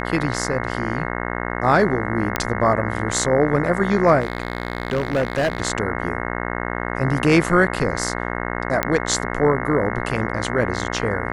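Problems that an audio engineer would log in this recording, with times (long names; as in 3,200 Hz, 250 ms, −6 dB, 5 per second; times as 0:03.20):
mains buzz 60 Hz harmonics 36 −26 dBFS
0:02.36: click −4 dBFS
0:04.20–0:05.62: clipping −15.5 dBFS
0:08.83: click −4 dBFS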